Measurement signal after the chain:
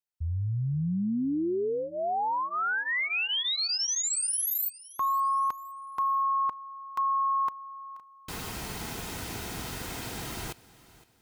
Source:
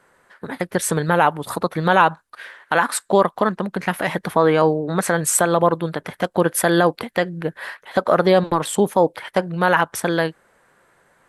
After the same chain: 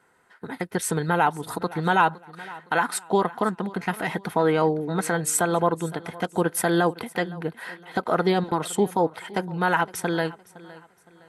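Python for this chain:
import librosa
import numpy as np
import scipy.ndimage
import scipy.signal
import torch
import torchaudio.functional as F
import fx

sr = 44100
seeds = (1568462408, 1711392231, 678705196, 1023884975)

y = fx.notch_comb(x, sr, f0_hz=570.0)
y = fx.echo_feedback(y, sr, ms=513, feedback_pct=35, wet_db=-20)
y = F.gain(torch.from_numpy(y), -4.0).numpy()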